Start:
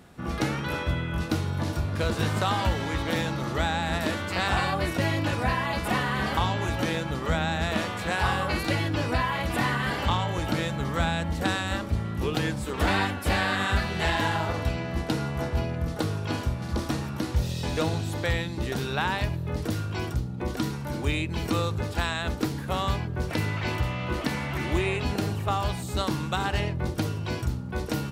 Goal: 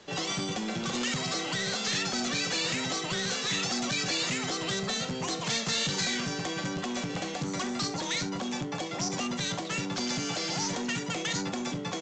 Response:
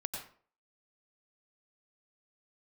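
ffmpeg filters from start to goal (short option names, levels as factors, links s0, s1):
-filter_complex "[0:a]asetrate=103194,aresample=44100,aecho=1:1:41|66:0.188|0.158,asplit=2[s0][s1];[s1]aeval=exprs='(mod(7.5*val(0)+1,2)-1)/7.5':c=same,volume=0.447[s2];[s0][s2]amix=inputs=2:normalize=0,acrossover=split=490|3000[s3][s4][s5];[s4]acompressor=threshold=0.0447:ratio=6[s6];[s3][s6][s5]amix=inputs=3:normalize=0,aresample=16000,asoftclip=type=tanh:threshold=0.0891,aresample=44100,highshelf=f=2800:g=9,volume=0.473"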